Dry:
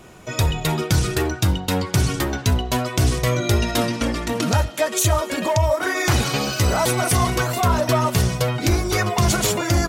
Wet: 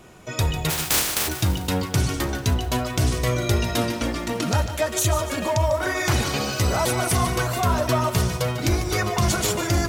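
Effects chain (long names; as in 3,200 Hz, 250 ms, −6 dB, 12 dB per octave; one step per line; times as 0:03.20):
0:00.69–0:01.27: compressing power law on the bin magnitudes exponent 0.12
feedback echo at a low word length 148 ms, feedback 55%, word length 7 bits, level −11 dB
level −3 dB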